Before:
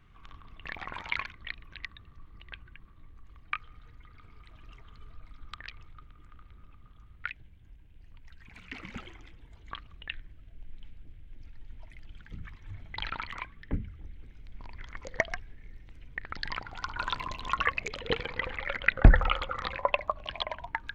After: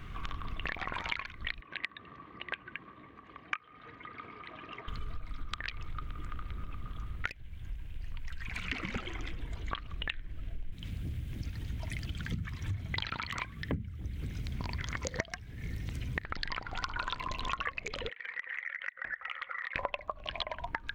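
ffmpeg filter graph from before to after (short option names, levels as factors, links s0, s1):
-filter_complex "[0:a]asettb=1/sr,asplit=3[s0][s1][s2];[s0]atrim=end=1.614[s3];[s1]atrim=start=1.61:end=4.88,asetpts=PTS-STARTPTS,afade=t=in:d=0.004:c=qsin,afade=t=out:st=3.266:d=0.004:c=qsin,highpass=280,lowpass=2500,bandreject=f=1400:w=9.2[s4];[s2]atrim=start=4.876[s5];[s3][s4]acrossfade=d=0.004:c1=hsin:c2=qsin[s6];[s6][s5]acrossfade=d=0.004:c1=qsin:c2=hsin,asettb=1/sr,asplit=3[s7][s8][s9];[s7]atrim=end=7.274[s10];[s8]atrim=start=7.27:end=8.65,asetpts=PTS-STARTPTS,afade=t=in:d=0.004:c=qsin,afade=t=out:st=1.376:d=0.004:c=qsin,equalizer=f=320:t=o:w=2.4:g=-6.5,aeval=exprs='clip(val(0),-1,0.00708)':c=same[s11];[s9]atrim=start=8.646[s12];[s10][s11]acrossfade=d=0.004:c1=hsin:c2=qsin[s13];[s13][s12]acrossfade=d=0.004:c1=qsin:c2=hsin,asettb=1/sr,asplit=3[s14][s15][s16];[s14]atrim=end=10.724[s17];[s15]atrim=start=10.72:end=16.25,asetpts=PTS-STARTPTS,afade=t=in:d=0.004:c=qsin,afade=t=out:st=5.526:d=0.004:c=qsin,highpass=85,bass=f=250:g=9,treble=f=4000:g=11[s18];[s16]atrim=start=16.246[s19];[s17][s18]acrossfade=d=0.004:c1=hsin:c2=qsin[s20];[s20][s19]acrossfade=d=0.004:c1=qsin:c2=hsin,asettb=1/sr,asplit=3[s21][s22][s23];[s21]atrim=end=18.094[s24];[s22]atrim=start=18.09:end=19.76,asetpts=PTS-STARTPTS,afade=t=in:d=0.004:c=qsin,afade=t=out:st=1.666:d=0.004:c=qsin,bandpass=f=1900:t=q:w=9.8,acompressor=threshold=0.00447:ratio=8:attack=3.2:release=140:knee=1:detection=peak[s25];[s23]atrim=start=19.756[s26];[s24][s25]acrossfade=d=0.004:c1=hsin:c2=qsin[s27];[s27][s26]acrossfade=d=0.004:c1=qsin:c2=hsin,bandreject=f=860:w=12,acompressor=threshold=0.00398:ratio=8,volume=5.62"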